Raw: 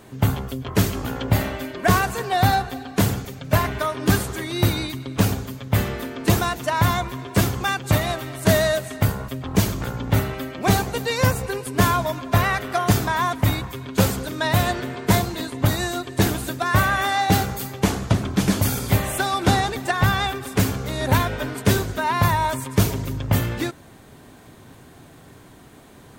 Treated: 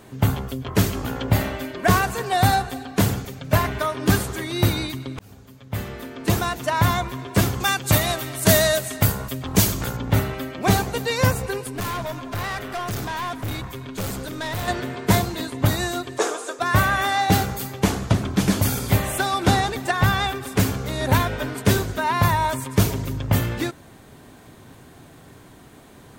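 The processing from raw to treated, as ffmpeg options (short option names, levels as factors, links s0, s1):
-filter_complex "[0:a]asettb=1/sr,asplit=3[s0][s1][s2];[s0]atrim=end=2.264[s3];[s1]atrim=start=2.26:end=2.86,asetpts=PTS-STARTPTS,afade=t=in:d=0.004:c=qsin,afade=t=out:st=0.596:d=0.004:c=qsin,equalizer=f=8700:w=1.5:g=7[s4];[s2]atrim=start=2.856[s5];[s3][s4]acrossfade=d=0.004:c1=hsin:c2=qsin[s6];[s6][s5]acrossfade=d=0.004:c1=qsin:c2=hsin,asettb=1/sr,asplit=3[s7][s8][s9];[s7]atrim=end=7.604[s10];[s8]atrim=start=7.6:end=9.97,asetpts=PTS-STARTPTS,afade=t=in:d=0.004:c=qsin,afade=t=out:st=2.366:d=0.004:c=qsin,highshelf=f=4000:g=9.5[s11];[s9]atrim=start=9.966[s12];[s10][s11]acrossfade=d=0.004:c1=hsin:c2=qsin[s13];[s13][s12]acrossfade=d=0.004:c1=qsin:c2=hsin,asettb=1/sr,asplit=3[s14][s15][s16];[s14]atrim=end=11.674[s17];[s15]atrim=start=11.67:end=14.68,asetpts=PTS-STARTPTS,afade=t=in:d=0.004:c=qsin,afade=t=out:st=3.006:d=0.004:c=qsin,aeval=exprs='(tanh(17.8*val(0)+0.25)-tanh(0.25))/17.8':c=same[s18];[s16]atrim=start=14.676[s19];[s17][s18]acrossfade=d=0.004:c1=hsin:c2=qsin[s20];[s20][s19]acrossfade=d=0.004:c1=qsin:c2=hsin,asplit=3[s21][s22][s23];[s21]afade=t=out:st=16.17:d=0.02[s24];[s22]highpass=f=400:w=0.5412,highpass=f=400:w=1.3066,equalizer=f=470:t=q:w=4:g=9,equalizer=f=1200:t=q:w=4:g=7,equalizer=f=2000:t=q:w=4:g=-5,equalizer=f=2900:t=q:w=4:g=-5,equalizer=f=4300:t=q:w=4:g=-7,equalizer=f=6900:t=q:w=4:g=4,lowpass=f=9100:w=0.5412,lowpass=f=9100:w=1.3066,afade=t=in:st=16.17:d=0.02,afade=t=out:st=16.59:d=0.02[s25];[s23]afade=t=in:st=16.59:d=0.02[s26];[s24][s25][s26]amix=inputs=3:normalize=0,asplit=2[s27][s28];[s27]atrim=end=5.19,asetpts=PTS-STARTPTS,afade=t=out:st=5.186:d=0.004:c=hsin[s29];[s28]atrim=start=5.19,asetpts=PTS-STARTPTS,afade=t=in:d=1.49[s30];[s29][s30]concat=n=2:v=0:a=1"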